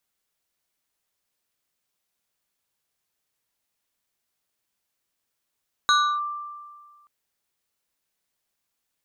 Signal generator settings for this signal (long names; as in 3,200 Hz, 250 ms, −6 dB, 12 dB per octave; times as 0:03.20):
two-operator FM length 1.18 s, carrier 1,180 Hz, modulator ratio 2.25, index 1.2, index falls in 0.31 s linear, decay 1.72 s, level −14 dB